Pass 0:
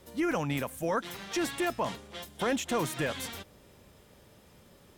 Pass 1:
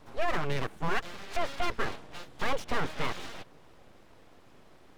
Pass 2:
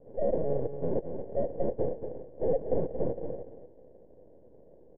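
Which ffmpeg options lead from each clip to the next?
-filter_complex "[0:a]acrossover=split=5100[a][b];[b]acompressor=threshold=-56dB:ratio=4:attack=1:release=60[c];[a][c]amix=inputs=2:normalize=0,aemphasis=mode=reproduction:type=75kf,aeval=exprs='abs(val(0))':c=same,volume=4dB"
-af "acrusher=samples=35:mix=1:aa=0.000001,lowpass=f=510:t=q:w=4.9,aecho=1:1:230:0.376,volume=-4dB"

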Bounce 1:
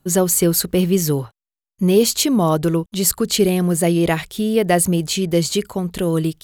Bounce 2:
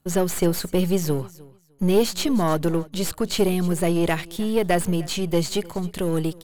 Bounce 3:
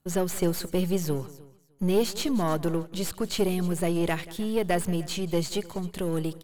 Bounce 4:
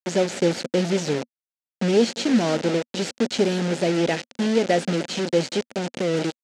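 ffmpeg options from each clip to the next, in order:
-filter_complex "[0:a]aeval=exprs='if(lt(val(0),0),0.447*val(0),val(0))':c=same,aecho=1:1:304|608:0.0794|0.0143,acrossover=split=4200[a][b];[b]acompressor=threshold=-27dB:ratio=4:attack=1:release=60[c];[a][c]amix=inputs=2:normalize=0,volume=-1.5dB"
-af "aecho=1:1:182:0.1,volume=-5dB"
-af "acrusher=bits=4:mix=0:aa=0.000001,highpass=170,equalizer=f=240:t=q:w=4:g=7,equalizer=f=530:t=q:w=4:g=6,equalizer=f=1.1k:t=q:w=4:g=-10,lowpass=f=6.8k:w=0.5412,lowpass=f=6.8k:w=1.3066,volume=3.5dB"

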